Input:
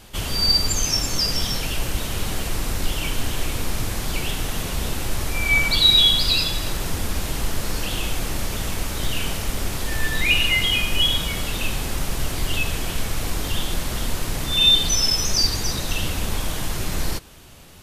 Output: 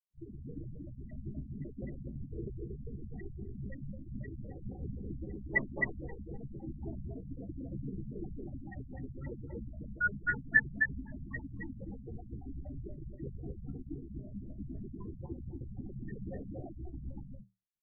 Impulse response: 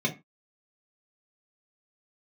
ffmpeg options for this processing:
-filter_complex "[0:a]afftfilt=real='re*gte(hypot(re,im),0.0891)':imag='im*gte(hypot(re,im),0.0891)':win_size=1024:overlap=0.75,equalizer=frequency=630:width_type=o:width=0.49:gain=3.5,flanger=delay=8.9:depth=2.1:regen=-59:speed=1.4:shape=sinusoidal,highpass=frequency=370:width_type=q:width=0.5412,highpass=frequency=370:width_type=q:width=1.307,lowpass=frequency=3000:width_type=q:width=0.5176,lowpass=frequency=3000:width_type=q:width=0.7071,lowpass=frequency=3000:width_type=q:width=1.932,afreqshift=-320,flanger=delay=8.6:depth=6.8:regen=-69:speed=0.25:shape=triangular,asplit=2[link_01][link_02];[link_02]adelay=15,volume=-5dB[link_03];[link_01][link_03]amix=inputs=2:normalize=0,aecho=1:1:116.6|233.2:0.251|0.794,afftfilt=real='re*lt(b*sr/1024,230*pow(2000/230,0.5+0.5*sin(2*PI*3.8*pts/sr)))':imag='im*lt(b*sr/1024,230*pow(2000/230,0.5+0.5*sin(2*PI*3.8*pts/sr)))':win_size=1024:overlap=0.75,volume=7.5dB"

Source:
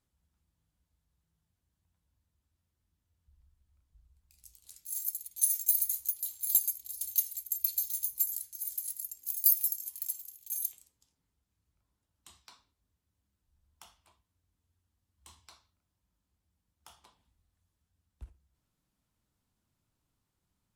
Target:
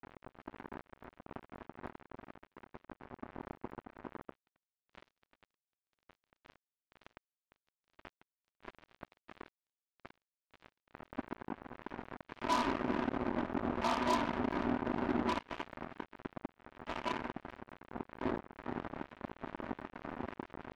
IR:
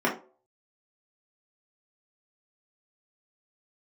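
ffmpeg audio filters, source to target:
-filter_complex "[0:a]aeval=exprs='val(0)+0.5*0.0422*sgn(val(0))':channel_layout=same,agate=range=-33dB:threshold=-22dB:ratio=3:detection=peak,acompressor=threshold=-40dB:ratio=10,lowpass=frequency=1200:width=0.5412,lowpass=frequency=1200:width=1.3066,aecho=1:1:3.2:0.85,aecho=1:1:420:0.266[link_01];[1:a]atrim=start_sample=2205,atrim=end_sample=4410[link_02];[link_01][link_02]afir=irnorm=-1:irlink=0,asettb=1/sr,asplit=3[link_03][link_04][link_05];[link_03]atrim=end=12.414[link_06];[link_04]atrim=start=12.41:end=15.39,asetpts=PTS-STARTPTS,afade=type=in:duration=0.004:curve=qsin,afade=type=out:start_time=2.976:duration=0.004:curve=qsin,acontrast=30[link_07];[link_05]atrim=start=15.386[link_08];[link_06][link_07]acrossfade=duration=0.004:curve1=hsin:curve2=qsin[link_09];[link_09][link_08]acrossfade=duration=0.004:curve1=qsin:curve2=hsin,acrusher=bits=5:mix=0:aa=0.5,volume=5dB"

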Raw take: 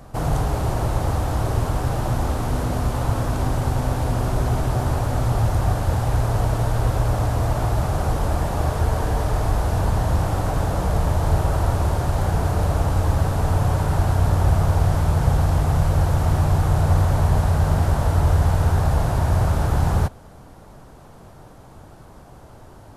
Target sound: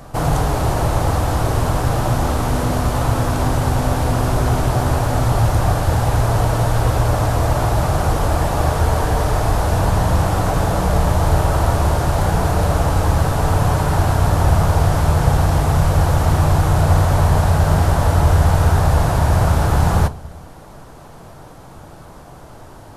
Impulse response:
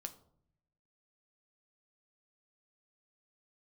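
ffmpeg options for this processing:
-filter_complex "[0:a]asplit=2[link_01][link_02];[1:a]atrim=start_sample=2205,lowshelf=frequency=420:gain=-6.5[link_03];[link_02][link_03]afir=irnorm=-1:irlink=0,volume=8dB[link_04];[link_01][link_04]amix=inputs=2:normalize=0,volume=-1dB"

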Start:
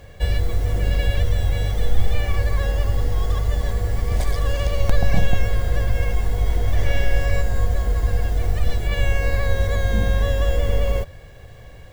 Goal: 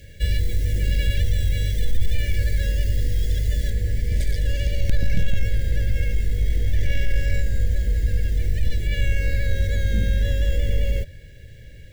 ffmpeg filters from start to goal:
ffmpeg -i in.wav -af "asuperstop=centerf=1000:order=12:qfactor=1,equalizer=frequency=560:width=1:gain=-7,acontrast=66,asetnsamples=nb_out_samples=441:pad=0,asendcmd='3.7 highshelf g -2.5',highshelf=frequency=3900:gain=3.5,volume=-6.5dB" out.wav

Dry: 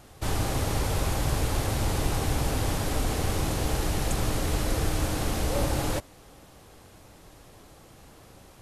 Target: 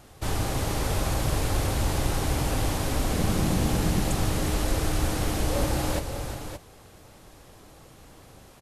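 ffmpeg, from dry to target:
ffmpeg -i in.wav -filter_complex "[0:a]asettb=1/sr,asplit=3[link_01][link_02][link_03];[link_01]atrim=end=3.134[link_04];[link_02]atrim=start=3.13:end=4.01,asetpts=PTS-STARTPTS,afade=type=in:duration=0.004:curve=qsin,afade=type=out:start_time=0.876:duration=0.004:curve=qsin,equalizer=frequency=190:width_type=o:width=0.89:gain=10.5[link_05];[link_03]atrim=start=4.006[link_06];[link_04][link_05]acrossfade=duration=0.004:curve1=hsin:curve2=qsin[link_07];[link_07][link_06]acrossfade=duration=0.004:curve1=qsin:curve2=hsin,asplit=2[link_08][link_09];[link_09]aecho=0:1:355|572:0.335|0.355[link_10];[link_08][link_10]amix=inputs=2:normalize=0" out.wav

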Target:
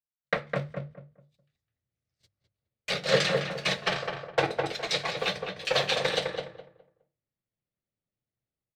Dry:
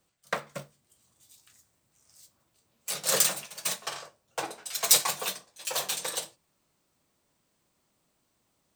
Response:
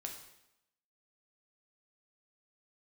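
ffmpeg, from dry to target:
-filter_complex "[0:a]agate=range=-35dB:threshold=-51dB:ratio=16:detection=peak,bandreject=frequency=50:width_type=h:width=6,bandreject=frequency=100:width_type=h:width=6,bandreject=frequency=150:width_type=h:width=6,asplit=2[link_01][link_02];[link_02]aeval=exprs='val(0)*gte(abs(val(0)),0.0251)':channel_layout=same,volume=-12dB[link_03];[link_01][link_03]amix=inputs=2:normalize=0,bandreject=frequency=990:width=9.1,acrossover=split=7600[link_04][link_05];[link_05]acompressor=threshold=-40dB:ratio=4:attack=1:release=60[link_06];[link_04][link_06]amix=inputs=2:normalize=0,equalizer=frequency=125:width_type=o:width=1:gain=9,equalizer=frequency=500:width_type=o:width=1:gain=8,equalizer=frequency=2000:width_type=o:width=1:gain=9,equalizer=frequency=4000:width_type=o:width=1:gain=8,equalizer=frequency=8000:width_type=o:width=1:gain=-5,dynaudnorm=framelen=160:gausssize=3:maxgain=15.5dB,aemphasis=mode=reproduction:type=bsi,asplit=2[link_07][link_08];[link_08]adelay=207,lowpass=frequency=1500:poles=1,volume=-3dB,asplit=2[link_09][link_10];[link_10]adelay=207,lowpass=frequency=1500:poles=1,volume=0.27,asplit=2[link_11][link_12];[link_12]adelay=207,lowpass=frequency=1500:poles=1,volume=0.27,asplit=2[link_13][link_14];[link_14]adelay=207,lowpass=frequency=1500:poles=1,volume=0.27[link_15];[link_09][link_11][link_13][link_15]amix=inputs=4:normalize=0[link_16];[link_07][link_16]amix=inputs=2:normalize=0,volume=-9dB"

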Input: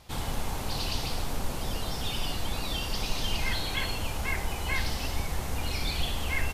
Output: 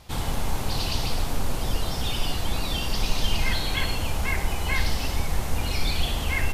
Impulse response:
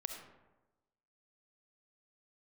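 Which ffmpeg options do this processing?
-filter_complex "[0:a]asplit=2[link_01][link_02];[1:a]atrim=start_sample=2205,lowshelf=frequency=180:gain=7[link_03];[link_02][link_03]afir=irnorm=-1:irlink=0,volume=-4dB[link_04];[link_01][link_04]amix=inputs=2:normalize=0"

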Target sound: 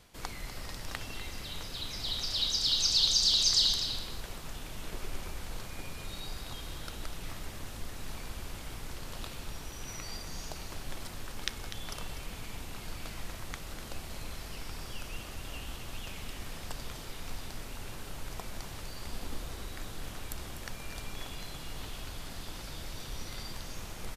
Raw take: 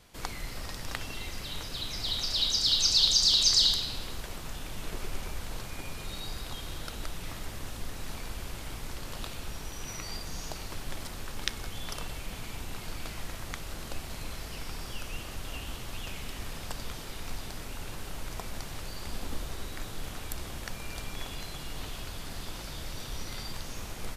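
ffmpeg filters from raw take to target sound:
ffmpeg -i in.wav -af "areverse,acompressor=mode=upward:threshold=-38dB:ratio=2.5,areverse,aecho=1:1:247:0.299,volume=-3dB" out.wav

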